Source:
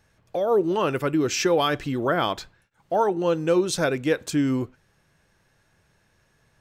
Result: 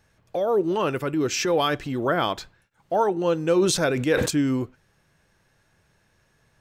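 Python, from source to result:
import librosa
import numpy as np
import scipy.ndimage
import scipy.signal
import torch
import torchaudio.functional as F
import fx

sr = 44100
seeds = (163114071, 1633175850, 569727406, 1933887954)

y = fx.transient(x, sr, attack_db=-6, sustain_db=-1, at=(0.5, 1.96), fade=0.02)
y = fx.sustainer(y, sr, db_per_s=46.0, at=(3.55, 4.31))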